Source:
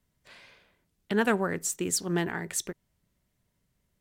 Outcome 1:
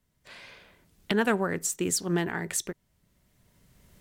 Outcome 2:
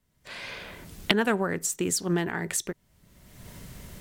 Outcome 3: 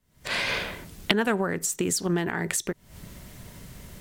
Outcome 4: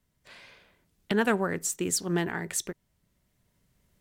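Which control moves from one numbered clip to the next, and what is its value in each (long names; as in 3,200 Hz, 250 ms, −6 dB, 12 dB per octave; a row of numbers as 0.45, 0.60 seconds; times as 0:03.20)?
camcorder AGC, rising by: 13, 34, 88, 5 dB per second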